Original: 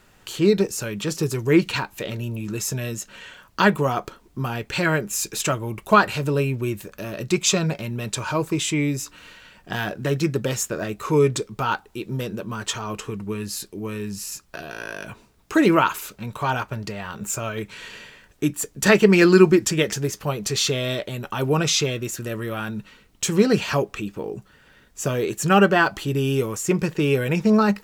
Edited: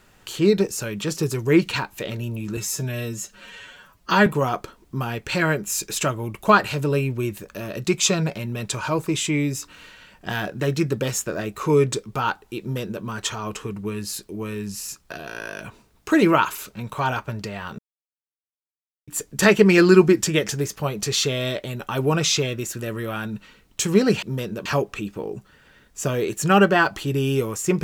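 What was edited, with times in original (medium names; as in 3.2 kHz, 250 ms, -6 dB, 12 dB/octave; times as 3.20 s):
2.57–3.70 s: stretch 1.5×
12.04–12.47 s: copy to 23.66 s
17.22–18.51 s: mute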